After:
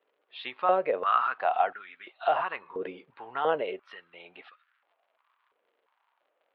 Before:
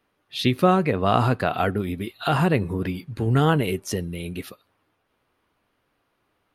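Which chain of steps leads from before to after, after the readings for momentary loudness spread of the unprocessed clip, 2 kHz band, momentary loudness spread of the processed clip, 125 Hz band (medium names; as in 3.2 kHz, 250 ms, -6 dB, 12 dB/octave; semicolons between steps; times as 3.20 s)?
13 LU, -6.0 dB, 21 LU, -35.0 dB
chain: crackle 130 per s -45 dBFS; inverse Chebyshev low-pass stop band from 6.3 kHz, stop band 40 dB; step-sequenced high-pass 2.9 Hz 470–1500 Hz; trim -9 dB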